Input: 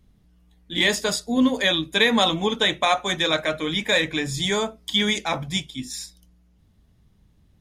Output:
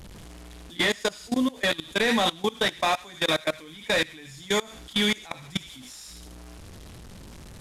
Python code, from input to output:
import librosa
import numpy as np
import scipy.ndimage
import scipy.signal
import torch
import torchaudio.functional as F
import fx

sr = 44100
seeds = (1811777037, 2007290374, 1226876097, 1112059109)

y = fx.delta_mod(x, sr, bps=64000, step_db=-31.0)
y = fx.echo_wet_highpass(y, sr, ms=78, feedback_pct=33, hz=1700.0, wet_db=-3.5)
y = fx.level_steps(y, sr, step_db=22)